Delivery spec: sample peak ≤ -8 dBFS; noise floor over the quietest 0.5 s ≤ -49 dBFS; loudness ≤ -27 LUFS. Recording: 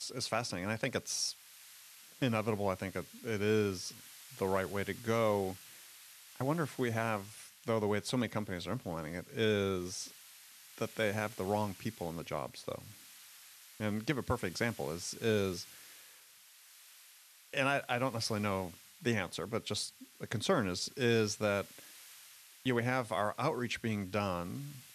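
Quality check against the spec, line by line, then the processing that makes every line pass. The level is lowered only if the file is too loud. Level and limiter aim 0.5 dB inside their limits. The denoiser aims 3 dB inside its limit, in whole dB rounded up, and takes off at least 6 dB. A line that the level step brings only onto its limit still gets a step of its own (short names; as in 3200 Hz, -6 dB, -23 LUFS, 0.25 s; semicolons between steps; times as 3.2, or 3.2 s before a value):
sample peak -17.0 dBFS: OK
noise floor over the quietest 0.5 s -60 dBFS: OK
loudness -35.5 LUFS: OK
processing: none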